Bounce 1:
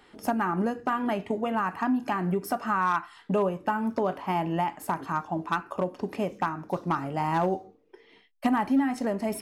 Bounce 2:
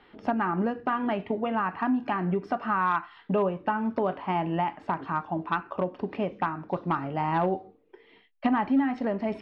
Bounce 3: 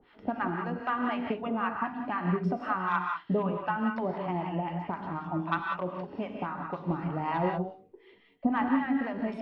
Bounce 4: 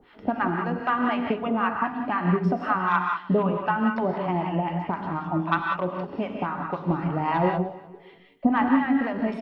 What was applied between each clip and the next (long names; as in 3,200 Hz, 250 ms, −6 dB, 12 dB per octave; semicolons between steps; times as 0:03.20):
low-pass filter 3,700 Hz 24 dB per octave
two-band tremolo in antiphase 3.9 Hz, depth 100%, crossover 710 Hz; reverb whose tail is shaped and stops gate 210 ms rising, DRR 2 dB
repeating echo 301 ms, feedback 28%, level −21.5 dB; level +6 dB